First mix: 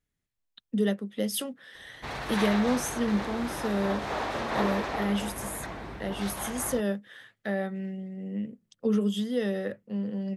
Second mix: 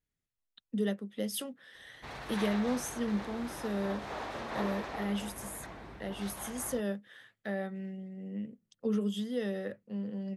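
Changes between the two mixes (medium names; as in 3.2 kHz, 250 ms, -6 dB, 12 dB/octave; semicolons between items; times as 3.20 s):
speech -5.5 dB; background -8.0 dB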